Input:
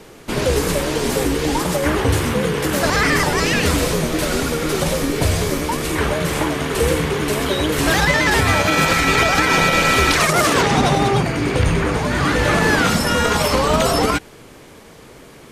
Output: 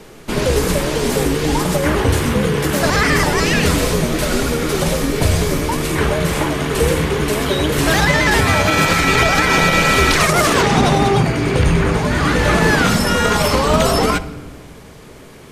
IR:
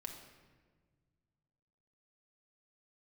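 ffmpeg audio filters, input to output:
-filter_complex "[0:a]asplit=2[s0][s1];[s1]lowshelf=f=190:g=8[s2];[1:a]atrim=start_sample=2205[s3];[s2][s3]afir=irnorm=-1:irlink=0,volume=0.631[s4];[s0][s4]amix=inputs=2:normalize=0,volume=0.841"

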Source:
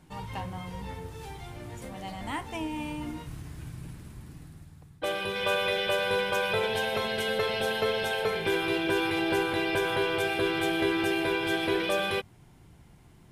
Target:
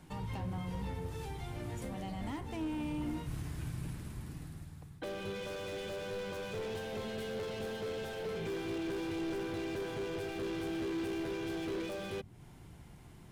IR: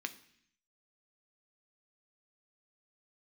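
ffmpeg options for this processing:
-filter_complex "[0:a]asoftclip=type=hard:threshold=0.0237,acrossover=split=450[s0][s1];[s1]acompressor=threshold=0.00398:ratio=4[s2];[s0][s2]amix=inputs=2:normalize=0,volume=1.12"

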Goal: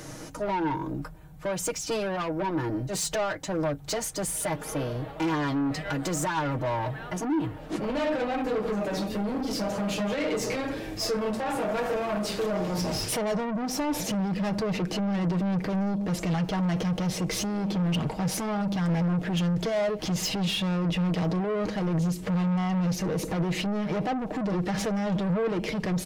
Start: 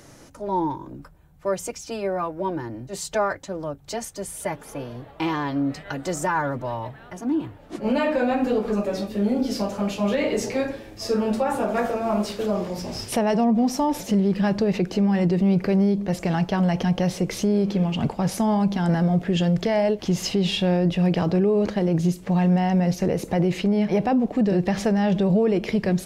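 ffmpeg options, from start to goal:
-af "alimiter=limit=0.0891:level=0:latency=1:release=209,asoftclip=type=tanh:threshold=0.0266,aecho=1:1:6.4:0.45,volume=2"

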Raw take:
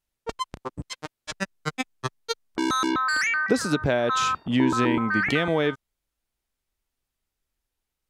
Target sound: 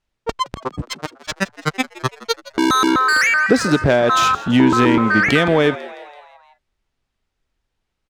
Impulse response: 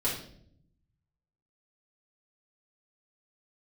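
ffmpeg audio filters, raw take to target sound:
-filter_complex "[0:a]adynamicsmooth=sensitivity=4:basefreq=5400,asoftclip=type=tanh:threshold=0.266,asplit=6[s0][s1][s2][s3][s4][s5];[s1]adelay=166,afreqshift=96,volume=0.126[s6];[s2]adelay=332,afreqshift=192,volume=0.0733[s7];[s3]adelay=498,afreqshift=288,volume=0.0422[s8];[s4]adelay=664,afreqshift=384,volume=0.0245[s9];[s5]adelay=830,afreqshift=480,volume=0.0143[s10];[s0][s6][s7][s8][s9][s10]amix=inputs=6:normalize=0,volume=2.82"

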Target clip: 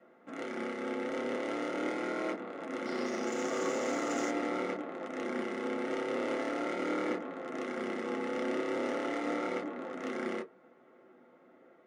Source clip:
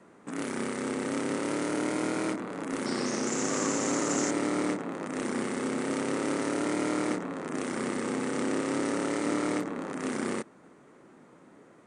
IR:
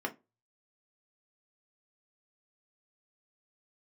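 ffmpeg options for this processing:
-filter_complex "[0:a]bandreject=f=60:t=h:w=6,bandreject=f=120:t=h:w=6,bandreject=f=180:t=h:w=6,bandreject=f=240:t=h:w=6,bandreject=f=300:t=h:w=6,asplit=2[s0][s1];[s1]acrusher=bits=3:mix=0:aa=0.5,volume=0.266[s2];[s0][s2]amix=inputs=2:normalize=0,adynamicsmooth=sensitivity=7.5:basefreq=4600[s3];[1:a]atrim=start_sample=2205,asetrate=74970,aresample=44100[s4];[s3][s4]afir=irnorm=-1:irlink=0,volume=0.562"

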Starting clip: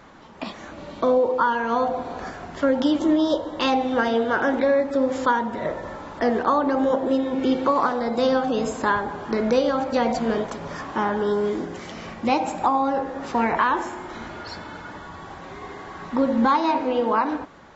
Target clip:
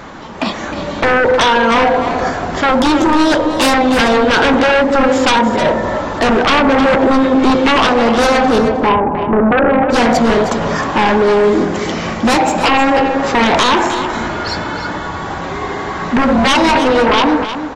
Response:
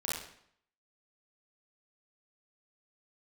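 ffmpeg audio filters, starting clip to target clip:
-filter_complex "[0:a]asettb=1/sr,asplit=3[s0][s1][s2];[s0]atrim=end=8.584[s3];[s1]atrim=start=8.58:end=9.9,asetpts=PTS-STARTPTS,afade=t=in:d=0.004:c=qsin,afade=t=out:st=1.316:d=0.004:c=qsin,lowpass=f=1000:w=0.5412,lowpass=f=1000:w=1.3066[s4];[s2]atrim=start=9.896[s5];[s3][s4]acrossfade=d=0.004:c1=hsin:c2=qsin[s6];[s6][s5]acrossfade=d=0.004:c1=qsin:c2=hsin,aeval=exprs='0.398*sin(PI/2*3.98*val(0)/0.398)':c=same,aecho=1:1:311:0.316"

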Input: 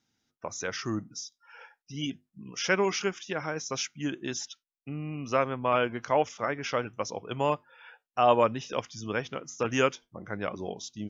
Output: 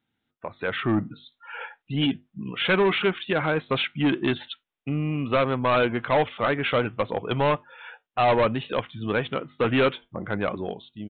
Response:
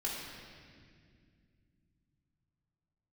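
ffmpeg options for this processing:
-af "dynaudnorm=f=140:g=11:m=5.01,aresample=8000,asoftclip=type=tanh:threshold=0.158,aresample=44100"

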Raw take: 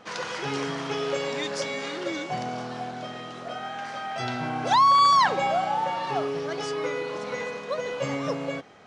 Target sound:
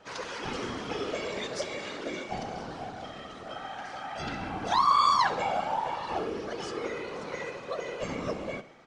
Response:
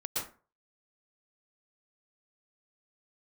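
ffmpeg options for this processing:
-af "afftfilt=real='hypot(re,im)*cos(2*PI*random(0))':imag='hypot(re,im)*sin(2*PI*random(1))':win_size=512:overlap=0.75,aecho=1:1:68|136|204|272|340:0.15|0.0808|0.0436|0.0236|0.0127,volume=1.12"

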